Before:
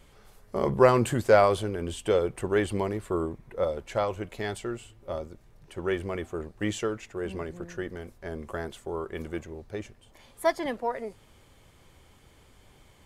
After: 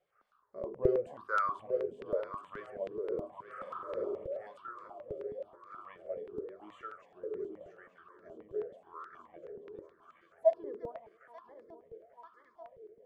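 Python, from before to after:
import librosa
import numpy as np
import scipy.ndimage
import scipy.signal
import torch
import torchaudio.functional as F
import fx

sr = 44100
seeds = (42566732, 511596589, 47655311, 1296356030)

y = fx.reverse_delay_fb(x, sr, ms=444, feedback_pct=77, wet_db=-8.5)
y = fx.peak_eq(y, sr, hz=840.0, db=-8.5, octaves=0.36)
y = fx.hum_notches(y, sr, base_hz=50, count=9)
y = fx.wah_lfo(y, sr, hz=0.91, low_hz=400.0, high_hz=1300.0, q=8.9)
y = fx.room_flutter(y, sr, wall_m=8.0, rt60_s=1.0, at=(3.43, 4.27))
y = fx.rev_schroeder(y, sr, rt60_s=0.43, comb_ms=32, drr_db=20.0)
y = fx.phaser_held(y, sr, hz=9.4, low_hz=250.0, high_hz=2900.0)
y = y * librosa.db_to_amplitude(4.0)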